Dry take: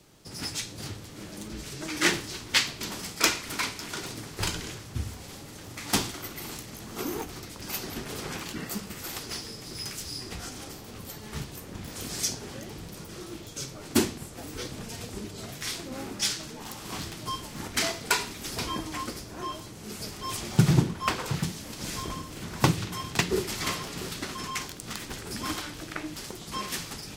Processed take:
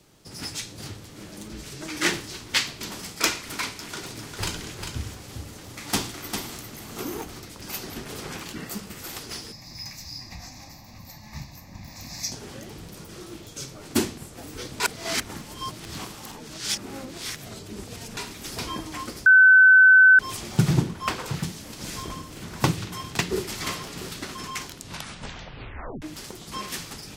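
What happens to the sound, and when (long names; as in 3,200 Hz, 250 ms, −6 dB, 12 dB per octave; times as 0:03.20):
0:03.75–0:07.36: single-tap delay 400 ms −6 dB
0:09.52–0:12.32: phaser with its sweep stopped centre 2,100 Hz, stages 8
0:14.80–0:18.17: reverse
0:19.26–0:20.19: beep over 1,520 Hz −9.5 dBFS
0:24.64: tape stop 1.38 s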